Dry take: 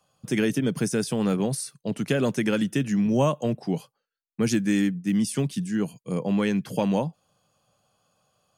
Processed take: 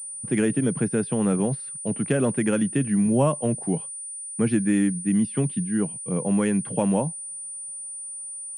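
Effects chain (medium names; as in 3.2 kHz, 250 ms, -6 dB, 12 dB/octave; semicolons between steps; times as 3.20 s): distance through air 350 m; class-D stage that switches slowly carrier 9.3 kHz; trim +2 dB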